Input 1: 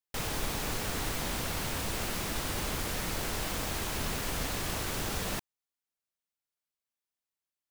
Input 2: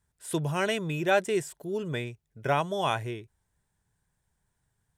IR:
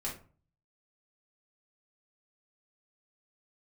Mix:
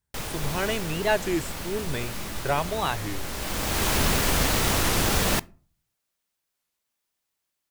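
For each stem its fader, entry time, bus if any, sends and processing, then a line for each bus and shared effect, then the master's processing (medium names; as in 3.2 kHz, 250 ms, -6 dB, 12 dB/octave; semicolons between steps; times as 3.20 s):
+2.5 dB, 0.00 s, send -20.5 dB, auto duck -14 dB, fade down 0.95 s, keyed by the second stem
-7.5 dB, 0.00 s, no send, none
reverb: on, RT60 0.40 s, pre-delay 3 ms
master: level rider gain up to 8 dB; warped record 33 1/3 rpm, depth 250 cents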